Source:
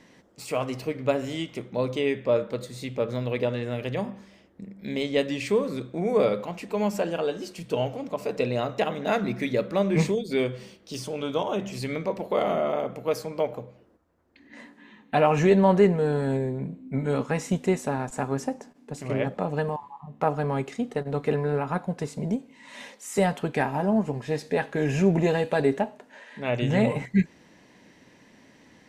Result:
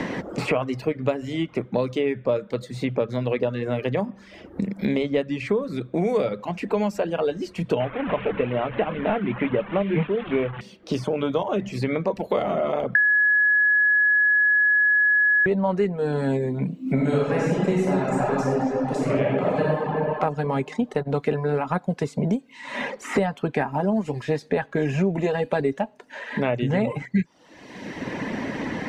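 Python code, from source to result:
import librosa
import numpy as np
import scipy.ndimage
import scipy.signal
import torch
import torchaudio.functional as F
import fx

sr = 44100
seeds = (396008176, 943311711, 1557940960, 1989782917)

y = fx.delta_mod(x, sr, bps=16000, step_db=-28.5, at=(7.8, 10.61))
y = fx.reverb_throw(y, sr, start_s=16.82, length_s=3.04, rt60_s=2.2, drr_db=-7.0)
y = fx.edit(y, sr, fx.bleep(start_s=12.95, length_s=2.51, hz=1690.0, db=-8.5), tone=tone)
y = fx.dereverb_blind(y, sr, rt60_s=0.52)
y = fx.lowpass(y, sr, hz=3400.0, slope=6)
y = fx.band_squash(y, sr, depth_pct=100)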